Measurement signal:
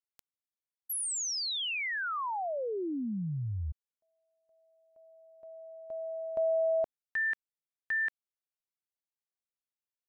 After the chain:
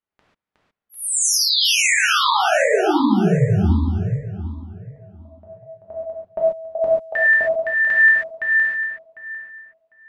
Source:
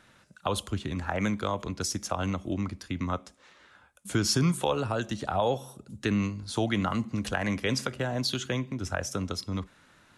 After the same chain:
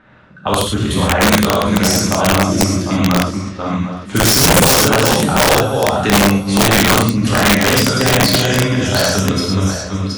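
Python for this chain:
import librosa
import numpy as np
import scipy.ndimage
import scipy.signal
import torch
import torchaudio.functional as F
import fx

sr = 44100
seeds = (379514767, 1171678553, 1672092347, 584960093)

y = fx.reverse_delay_fb(x, sr, ms=375, feedback_pct=44, wet_db=-3.5)
y = fx.rev_gated(y, sr, seeds[0], gate_ms=160, shape='flat', drr_db=-4.5)
y = fx.env_lowpass(y, sr, base_hz=1800.0, full_db=-21.5)
y = (np.mod(10.0 ** (13.5 / 20.0) * y + 1.0, 2.0) - 1.0) / 10.0 ** (13.5 / 20.0)
y = y * 10.0 ** (9.0 / 20.0)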